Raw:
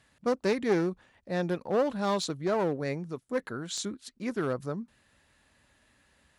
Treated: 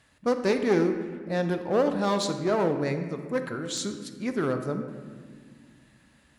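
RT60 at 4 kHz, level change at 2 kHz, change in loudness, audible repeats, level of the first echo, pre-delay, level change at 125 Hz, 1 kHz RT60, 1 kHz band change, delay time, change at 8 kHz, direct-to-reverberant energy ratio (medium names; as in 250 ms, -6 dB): 1.1 s, +3.0 dB, +3.5 dB, no echo, no echo, 21 ms, +4.0 dB, 1.6 s, +3.0 dB, no echo, +3.0 dB, 7.0 dB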